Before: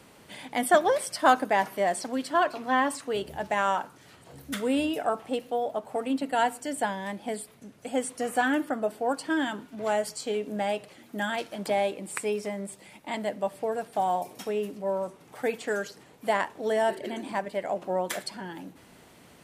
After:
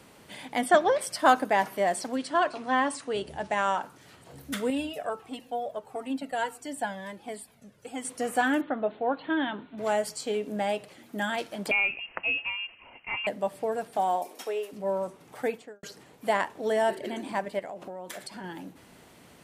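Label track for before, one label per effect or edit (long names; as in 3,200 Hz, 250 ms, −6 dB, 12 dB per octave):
0.600000	1.000000	low-pass filter 9,000 Hz → 4,400 Hz
2.160000	3.830000	elliptic low-pass filter 10,000 Hz
4.700000	8.050000	flanger whose copies keep moving one way falling 1.5 Hz
8.610000	9.780000	Chebyshev low-pass filter 4,100 Hz, order 8
11.710000	13.270000	voice inversion scrambler carrier 3,000 Hz
13.970000	14.710000	high-pass filter 170 Hz → 470 Hz 24 dB per octave
15.390000	15.830000	fade out and dull
17.590000	18.440000	downward compressor 10 to 1, threshold −35 dBFS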